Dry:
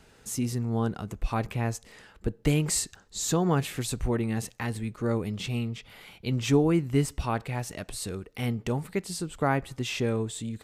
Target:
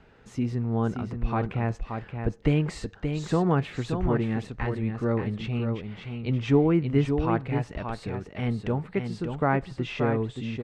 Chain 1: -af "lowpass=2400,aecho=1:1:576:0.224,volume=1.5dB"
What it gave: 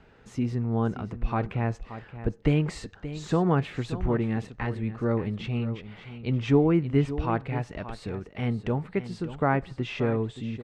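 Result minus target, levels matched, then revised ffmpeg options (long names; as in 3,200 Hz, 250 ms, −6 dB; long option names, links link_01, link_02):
echo-to-direct −6.5 dB
-af "lowpass=2400,aecho=1:1:576:0.473,volume=1.5dB"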